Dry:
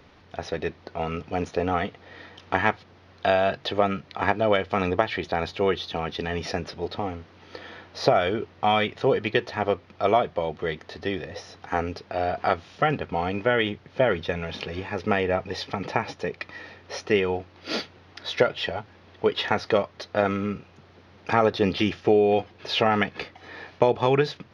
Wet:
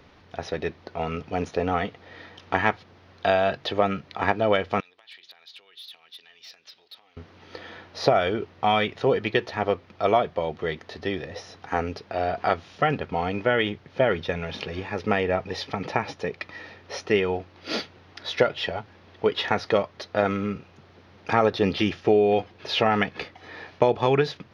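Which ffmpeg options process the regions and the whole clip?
-filter_complex "[0:a]asettb=1/sr,asplit=3[s0][s1][s2];[s0]atrim=end=4.804[s3];[s1]atrim=start=4.8:end=7.17,asetpts=PTS-STARTPTS,afade=t=in:d=0.004:c=qsin,afade=t=out:st=2.366:d=0.004:c=qsin,acompressor=threshold=0.0178:ratio=6:attack=3.2:release=140:knee=1:detection=peak,bandpass=f=3900:t=q:w=1.8,asoftclip=type=hard:threshold=0.0126[s4];[s2]atrim=start=7.166[s5];[s3][s4]acrossfade=d=0.004:c1=hsin:c2=qsin[s6];[s6][s5]acrossfade=d=0.004:c1=qsin:c2=hsin"

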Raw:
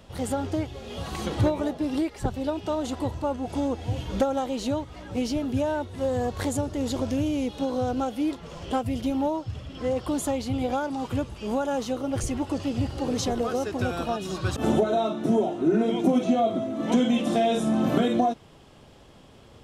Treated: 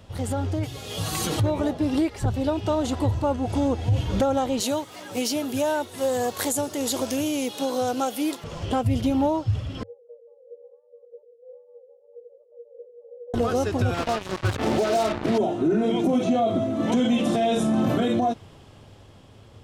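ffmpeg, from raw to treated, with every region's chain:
-filter_complex "[0:a]asettb=1/sr,asplit=3[s0][s1][s2];[s0]atrim=end=0.634[s3];[s1]atrim=start=0.63:end=1.4,asetpts=PTS-STARTPTS,afade=t=in:d=0.004:c=qsin,afade=t=out:st=0.766:d=0.004:c=qsin,highpass=55,aemphasis=mode=production:type=75kf,aecho=1:1:6.5:0.62,atrim=end_sample=33957[s4];[s2]atrim=start=1.396[s5];[s3][s4]acrossfade=d=0.004:c1=hsin:c2=qsin[s6];[s6][s5]acrossfade=d=0.004:c1=qsin:c2=hsin,asettb=1/sr,asplit=3[s7][s8][s9];[s7]atrim=end=4.604[s10];[s8]atrim=start=4.6:end=8.44,asetpts=PTS-STARTPTS,afade=t=in:d=0.004:c=qsin,afade=t=out:st=3.836:d=0.004:c=qsin,highpass=180,aemphasis=mode=production:type=bsi[s11];[s9]atrim=start=8.436[s12];[s10][s11]acrossfade=d=0.004:c1=hsin:c2=qsin[s13];[s13][s12]acrossfade=d=0.004:c1=qsin:c2=hsin,asettb=1/sr,asplit=3[s14][s15][s16];[s14]atrim=end=9.834[s17];[s15]atrim=start=9.83:end=13.34,asetpts=PTS-STARTPTS,afade=t=in:d=0.004:c=qsin,afade=t=out:st=3.506:d=0.004:c=qsin,asuperpass=centerf=180:order=4:qfactor=7.9,afreqshift=300[s18];[s16]atrim=start=13.336[s19];[s17][s18]acrossfade=d=0.004:c1=hsin:c2=qsin[s20];[s20][s19]acrossfade=d=0.004:c1=qsin:c2=hsin,asettb=1/sr,asplit=3[s21][s22][s23];[s21]atrim=end=13.944[s24];[s22]atrim=start=13.94:end=15.38,asetpts=PTS-STARTPTS,afade=t=in:d=0.004:c=qsin,afade=t=out:st=1.436:d=0.004:c=qsin,bass=f=250:g=-7,treble=f=4000:g=-12,acrusher=bits=4:mix=0:aa=0.5[s25];[s23]atrim=start=15.376[s26];[s24][s25]acrossfade=d=0.004:c1=hsin:c2=qsin[s27];[s27][s26]acrossfade=d=0.004:c1=qsin:c2=hsin,equalizer=f=100:w=3.6:g=11.5,alimiter=limit=0.119:level=0:latency=1:release=29,dynaudnorm=f=240:g=11:m=1.58"

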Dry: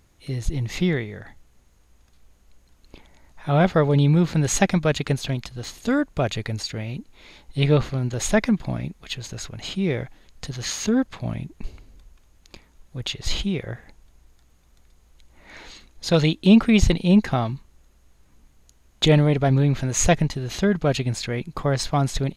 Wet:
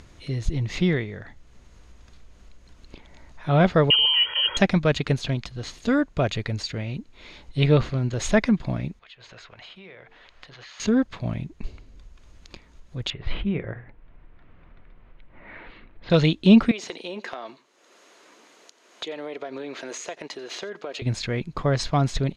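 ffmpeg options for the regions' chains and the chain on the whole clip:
-filter_complex "[0:a]asettb=1/sr,asplit=3[s0][s1][s2];[s0]atrim=end=3.904[s3];[s1]atrim=start=3.9:end=4.57,asetpts=PTS-STARTPTS,afade=t=in:d=0.004:c=qsin,afade=t=out:st=0.666:d=0.004:c=qsin,lowpass=f=2800:t=q:w=0.5098,lowpass=f=2800:t=q:w=0.6013,lowpass=f=2800:t=q:w=0.9,lowpass=f=2800:t=q:w=2.563,afreqshift=-3300,aecho=1:1:2.1:0.98,atrim=end_sample=29547[s4];[s2]atrim=start=4.566[s5];[s3][s4]acrossfade=d=0.004:c1=hsin:c2=qsin[s6];[s6][s5]acrossfade=d=0.004:c1=qsin:c2=hsin,asettb=1/sr,asplit=3[s7][s8][s9];[s7]atrim=end=8.994[s10];[s8]atrim=start=8.99:end=10.8,asetpts=PTS-STARTPTS,afade=t=in:d=0.004:c=qsin,afade=t=out:st=1.806:d=0.004:c=qsin,acrossover=split=540 3900:gain=0.126 1 0.126[s11][s12][s13];[s11][s12][s13]amix=inputs=3:normalize=0,bandreject=f=50:t=h:w=6,bandreject=f=100:t=h:w=6,bandreject=f=150:t=h:w=6,bandreject=f=200:t=h:w=6,bandreject=f=250:t=h:w=6,bandreject=f=300:t=h:w=6,bandreject=f=350:t=h:w=6,bandreject=f=400:t=h:w=6,bandreject=f=450:t=h:w=6,acompressor=threshold=0.00355:ratio=3:attack=3.2:release=140:knee=1:detection=peak[s14];[s9]atrim=start=10.796[s15];[s10][s14]acrossfade=d=0.004:c1=hsin:c2=qsin[s16];[s16][s15]acrossfade=d=0.004:c1=qsin:c2=hsin,asettb=1/sr,asplit=3[s17][s18][s19];[s17]atrim=end=13.104[s20];[s18]atrim=start=13.1:end=16.1,asetpts=PTS-STARTPTS,afade=t=in:d=0.004:c=qsin,afade=t=out:st=2.996:d=0.004:c=qsin,lowpass=f=2500:w=0.5412,lowpass=f=2500:w=1.3066,bandreject=f=60:t=h:w=6,bandreject=f=120:t=h:w=6,bandreject=f=180:t=h:w=6,bandreject=f=240:t=h:w=6,bandreject=f=300:t=h:w=6,bandreject=f=360:t=h:w=6,bandreject=f=420:t=h:w=6,bandreject=f=480:t=h:w=6[s21];[s19]atrim=start=16.096[s22];[s20][s21]acrossfade=d=0.004:c1=hsin:c2=qsin[s23];[s23][s22]acrossfade=d=0.004:c1=qsin:c2=hsin,asettb=1/sr,asplit=3[s24][s25][s26];[s24]atrim=end=16.714[s27];[s25]atrim=start=16.71:end=21.02,asetpts=PTS-STARTPTS,afade=t=in:d=0.004:c=qsin,afade=t=out:st=4.306:d=0.004:c=qsin,highpass=f=350:w=0.5412,highpass=f=350:w=1.3066,acompressor=threshold=0.0355:ratio=10:attack=3.2:release=140:knee=1:detection=peak,aecho=1:1:89:0.0891,atrim=end_sample=190071[s28];[s26]atrim=start=21.016[s29];[s27][s28]acrossfade=d=0.004:c1=hsin:c2=qsin[s30];[s30][s29]acrossfade=d=0.004:c1=qsin:c2=hsin,acompressor=mode=upward:threshold=0.0126:ratio=2.5,lowpass=5900,bandreject=f=810:w=12"

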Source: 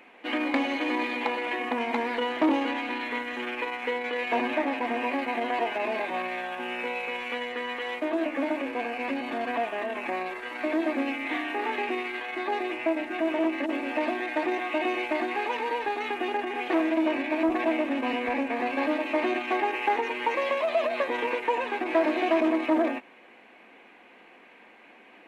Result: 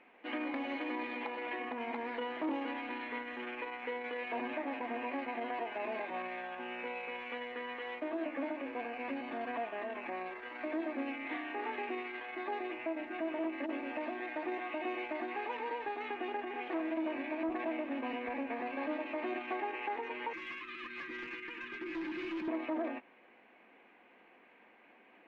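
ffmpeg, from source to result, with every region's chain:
-filter_complex "[0:a]asettb=1/sr,asplit=3[s0][s1][s2];[s0]atrim=end=20.334[s3];[s1]atrim=start=20.33:end=22.48,asetpts=PTS-STARTPTS,afade=t=in:d=0.004:c=qsin,afade=t=out:st=2.146:d=0.004:c=qsin,asuperstop=centerf=660:order=8:qfactor=0.79,asoftclip=type=hard:threshold=0.0299,aecho=1:1:5.8:0.57,atrim=end_sample=94815[s4];[s2]atrim=start=22.476[s5];[s3][s4]acrossfade=d=0.004:c1=hsin:c2=qsin[s6];[s6][s5]acrossfade=d=0.004:c1=qsin:c2=hsin,lowpass=2900,alimiter=limit=0.1:level=0:latency=1:release=169,volume=0.376"

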